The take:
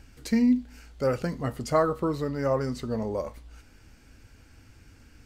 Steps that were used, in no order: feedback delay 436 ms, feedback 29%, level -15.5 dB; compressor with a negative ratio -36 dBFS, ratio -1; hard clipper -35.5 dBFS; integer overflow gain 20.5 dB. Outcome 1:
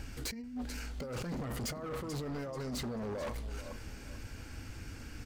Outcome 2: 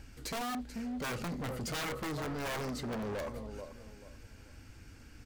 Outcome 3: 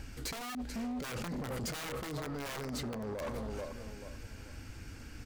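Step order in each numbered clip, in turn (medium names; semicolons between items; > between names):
compressor with a negative ratio > feedback delay > hard clipper > integer overflow; feedback delay > integer overflow > hard clipper > compressor with a negative ratio; feedback delay > integer overflow > compressor with a negative ratio > hard clipper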